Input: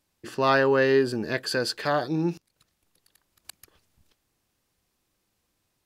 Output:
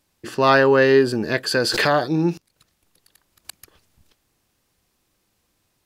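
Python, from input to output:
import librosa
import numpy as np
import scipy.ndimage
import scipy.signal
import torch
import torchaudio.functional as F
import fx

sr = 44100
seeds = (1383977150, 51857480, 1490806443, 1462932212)

y = fx.pre_swell(x, sr, db_per_s=27.0, at=(1.55, 2.01))
y = y * librosa.db_to_amplitude(6.0)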